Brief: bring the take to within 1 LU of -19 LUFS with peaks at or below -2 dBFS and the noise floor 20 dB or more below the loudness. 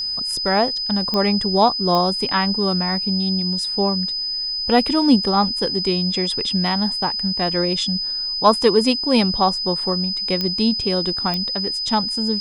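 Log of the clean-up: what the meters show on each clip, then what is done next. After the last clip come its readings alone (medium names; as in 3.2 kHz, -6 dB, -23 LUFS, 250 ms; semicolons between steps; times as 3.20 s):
clicks found 4; steady tone 5 kHz; tone level -22 dBFS; loudness -18.5 LUFS; peak level -2.5 dBFS; loudness target -19.0 LUFS
-> de-click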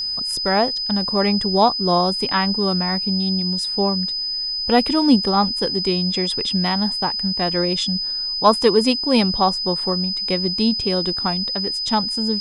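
clicks found 0; steady tone 5 kHz; tone level -22 dBFS
-> band-stop 5 kHz, Q 30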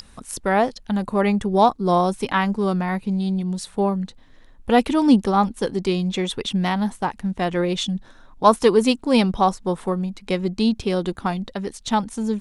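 steady tone not found; loudness -21.5 LUFS; peak level -2.5 dBFS; loudness target -19.0 LUFS
-> trim +2.5 dB; peak limiter -2 dBFS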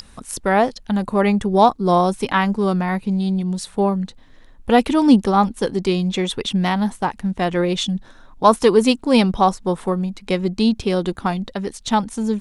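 loudness -19.0 LUFS; peak level -2.0 dBFS; noise floor -46 dBFS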